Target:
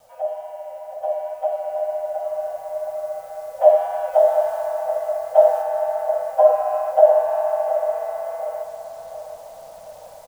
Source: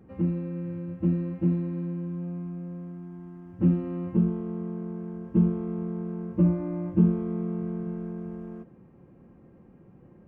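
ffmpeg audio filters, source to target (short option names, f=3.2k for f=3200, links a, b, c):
-filter_complex "[0:a]acrossover=split=810[a][b];[b]alimiter=level_in=22dB:limit=-24dB:level=0:latency=1:release=148,volume=-22dB[c];[a][c]amix=inputs=2:normalize=0,afreqshift=440,flanger=delay=3.8:depth=6.2:regen=34:speed=2:shape=triangular,acrusher=bits=10:mix=0:aa=0.000001,bass=f=250:g=15,treble=f=4k:g=7,asplit=2[d][e];[e]adelay=718,lowpass=f=2k:p=1,volume=-8.5dB,asplit=2[f][g];[g]adelay=718,lowpass=f=2k:p=1,volume=0.46,asplit=2[h][i];[i]adelay=718,lowpass=f=2k:p=1,volume=0.46,asplit=2[j][k];[k]adelay=718,lowpass=f=2k:p=1,volume=0.46,asplit=2[l][m];[m]adelay=718,lowpass=f=2k:p=1,volume=0.46[n];[d][f][h][j][l][n]amix=inputs=6:normalize=0,dynaudnorm=f=400:g=11:m=10dB,asplit=3[o][p][q];[o]afade=t=out:st=4.12:d=0.02[r];[p]adynamicequalizer=threshold=0.0355:dfrequency=2000:dqfactor=0.7:tfrequency=2000:tqfactor=0.7:attack=5:release=100:ratio=0.375:range=2:mode=boostabove:tftype=highshelf,afade=t=in:st=4.12:d=0.02,afade=t=out:st=5.61:d=0.02[s];[q]afade=t=in:st=5.61:d=0.02[t];[r][s][t]amix=inputs=3:normalize=0,volume=2dB"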